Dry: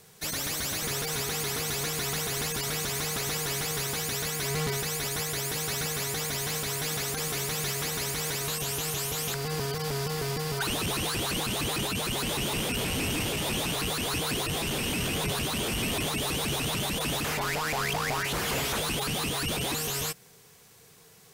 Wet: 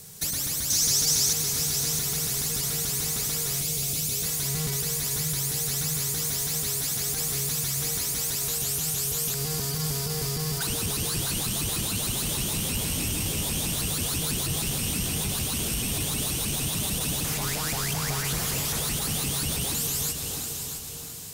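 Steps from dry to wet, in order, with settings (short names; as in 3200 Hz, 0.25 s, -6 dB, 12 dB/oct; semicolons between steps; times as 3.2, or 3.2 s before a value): tone controls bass +10 dB, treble +13 dB; plate-style reverb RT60 3.8 s, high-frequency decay 0.95×, DRR 8.5 dB; compressor 6:1, threshold -26 dBFS, peak gain reduction 8.5 dB; 0.7–1.33 bell 5700 Hz +12.5 dB 0.87 oct; 3.62–4.23 spectral delete 750–2100 Hz; lo-fi delay 0.661 s, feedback 35%, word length 9-bit, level -7.5 dB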